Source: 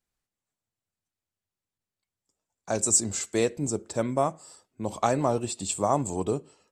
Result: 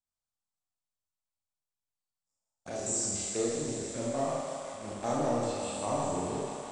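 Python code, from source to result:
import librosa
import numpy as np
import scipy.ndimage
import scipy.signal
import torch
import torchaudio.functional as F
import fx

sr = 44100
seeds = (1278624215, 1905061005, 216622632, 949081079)

p1 = fx.spec_steps(x, sr, hold_ms=100)
p2 = fx.low_shelf(p1, sr, hz=310.0, db=-4.0)
p3 = fx.env_phaser(p2, sr, low_hz=360.0, high_hz=2600.0, full_db=-26.5)
p4 = fx.echo_thinned(p3, sr, ms=164, feedback_pct=78, hz=310.0, wet_db=-7.0)
p5 = fx.quant_companded(p4, sr, bits=2)
p6 = p4 + (p5 * 10.0 ** (-10.0 / 20.0))
p7 = fx.brickwall_lowpass(p6, sr, high_hz=10000.0)
p8 = fx.rev_schroeder(p7, sr, rt60_s=0.74, comb_ms=26, drr_db=-2.5)
y = p8 * 10.0 ** (-9.0 / 20.0)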